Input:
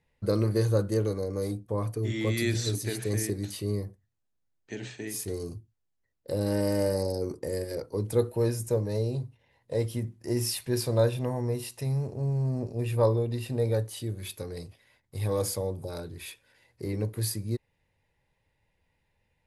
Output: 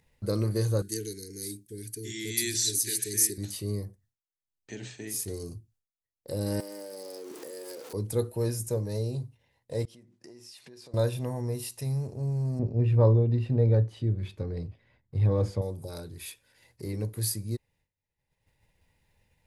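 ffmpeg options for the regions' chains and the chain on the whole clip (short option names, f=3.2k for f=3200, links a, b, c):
-filter_complex "[0:a]asettb=1/sr,asplit=3[a][b][c];[a]atrim=end=0.824[d];[b]atrim=start=0.82:end=3.38,asetpts=PTS-STARTPTS,afade=t=in:d=0.004:c=qsin,afade=t=out:st=2.556:d=0.004:c=qsin,asuperstop=centerf=820:order=20:qfactor=0.74,bass=f=250:g=-12,treble=f=4k:g=9[e];[c]atrim=start=3.376[f];[d][e]acrossfade=d=0.004:c1=hsin:c2=qsin[g];[g][f]acrossfade=d=0.004:c1=qsin:c2=hsin,asettb=1/sr,asplit=3[h][i][j];[h]atrim=end=6.604[k];[i]atrim=start=6.6:end=7.93,asetpts=PTS-STARTPTS,afade=t=in:d=0.004:c=qsin,afade=t=out:st=1.326:d=0.004:c=qsin,aeval=exprs='val(0)+0.5*0.0158*sgn(val(0))':c=same,highpass=f=270:w=0.5412,highpass=f=270:w=1.3066,acompressor=threshold=-34dB:ratio=10:attack=3.2:release=140:knee=1:detection=peak[l];[j]atrim=start=7.926[m];[k][l]acrossfade=d=0.004:c1=hsin:c2=qsin[n];[n][m]acrossfade=d=0.004:c1=qsin:c2=hsin,asettb=1/sr,asplit=3[o][p][q];[o]atrim=end=9.854[r];[p]atrim=start=9.85:end=10.94,asetpts=PTS-STARTPTS,afade=t=in:d=0.004:c=qsin,afade=t=out:st=1.086:d=0.004:c=qsin,acompressor=threshold=-42dB:ratio=12:attack=3.2:release=140:knee=1:detection=peak,highpass=250,lowpass=5.8k[s];[q]atrim=start=10.936[t];[r][s]acrossfade=d=0.004:c1=hsin:c2=qsin[u];[u][t]acrossfade=d=0.004:c1=qsin:c2=hsin,asettb=1/sr,asplit=3[v][w][x];[v]atrim=end=12.594[y];[w]atrim=start=12.59:end=15.62,asetpts=PTS-STARTPTS,afade=t=in:d=0.004:c=qsin,afade=t=out:st=3.026:d=0.004:c=qsin,lowpass=2.5k,lowshelf=f=380:g=9[z];[x]atrim=start=15.616[aa];[y][z]acrossfade=d=0.004:c1=hsin:c2=qsin[ab];[ab][aa]acrossfade=d=0.004:c1=qsin:c2=hsin,agate=range=-33dB:threshold=-59dB:ratio=3:detection=peak,bass=f=250:g=3,treble=f=4k:g=7,acompressor=mode=upward:threshold=-41dB:ratio=2.5,volume=-4dB"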